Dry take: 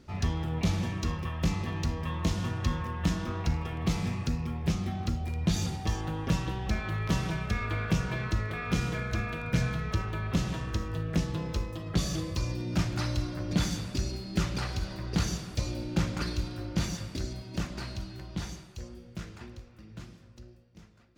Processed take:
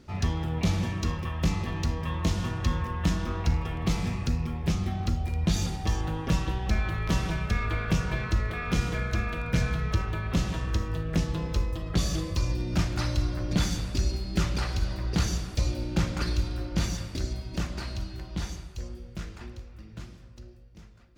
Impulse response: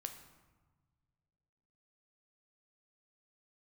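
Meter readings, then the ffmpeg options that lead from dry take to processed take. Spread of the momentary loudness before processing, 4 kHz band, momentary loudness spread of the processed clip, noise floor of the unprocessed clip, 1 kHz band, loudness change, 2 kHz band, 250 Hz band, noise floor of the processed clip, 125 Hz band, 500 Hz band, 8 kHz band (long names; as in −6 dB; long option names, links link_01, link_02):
9 LU, +2.0 dB, 8 LU, −52 dBFS, +2.0 dB, +2.5 dB, +2.0 dB, +1.0 dB, −47 dBFS, +2.5 dB, +2.0 dB, +2.0 dB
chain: -filter_complex "[0:a]asplit=2[link_01][link_02];[link_02]asubboost=boost=8.5:cutoff=70[link_03];[1:a]atrim=start_sample=2205[link_04];[link_03][link_04]afir=irnorm=-1:irlink=0,volume=-8dB[link_05];[link_01][link_05]amix=inputs=2:normalize=0"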